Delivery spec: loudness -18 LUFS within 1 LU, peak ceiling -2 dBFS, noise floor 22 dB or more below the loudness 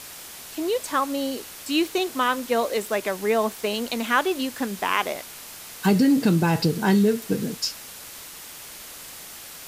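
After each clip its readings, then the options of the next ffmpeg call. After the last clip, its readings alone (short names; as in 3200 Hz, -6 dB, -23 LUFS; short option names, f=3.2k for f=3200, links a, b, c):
noise floor -41 dBFS; noise floor target -46 dBFS; loudness -23.5 LUFS; peak -6.5 dBFS; loudness target -18.0 LUFS
-> -af "afftdn=nr=6:nf=-41"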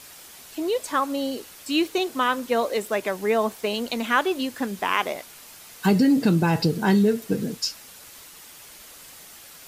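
noise floor -46 dBFS; loudness -23.5 LUFS; peak -6.5 dBFS; loudness target -18.0 LUFS
-> -af "volume=5.5dB,alimiter=limit=-2dB:level=0:latency=1"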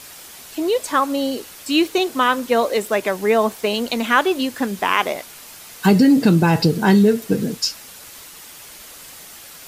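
loudness -18.0 LUFS; peak -2.0 dBFS; noise floor -40 dBFS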